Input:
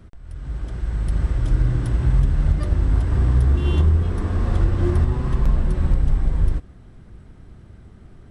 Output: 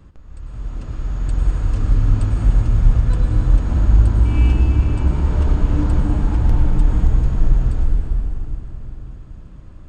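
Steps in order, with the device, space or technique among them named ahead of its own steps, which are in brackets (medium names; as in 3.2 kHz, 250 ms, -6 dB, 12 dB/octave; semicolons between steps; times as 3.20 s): slowed and reverbed (tape speed -16%; reverberation RT60 3.8 s, pre-delay 91 ms, DRR 1 dB)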